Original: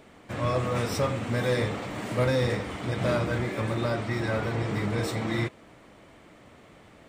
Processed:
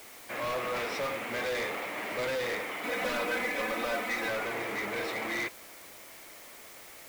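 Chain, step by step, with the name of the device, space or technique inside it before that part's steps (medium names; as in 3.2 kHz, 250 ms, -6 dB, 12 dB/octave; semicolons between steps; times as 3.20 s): drive-through speaker (band-pass 440–3800 Hz; peaking EQ 2.2 kHz +7 dB 0.49 oct; hard clipper -29.5 dBFS, distortion -9 dB; white noise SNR 16 dB); 2.84–4.29 s: comb 4 ms, depth 86%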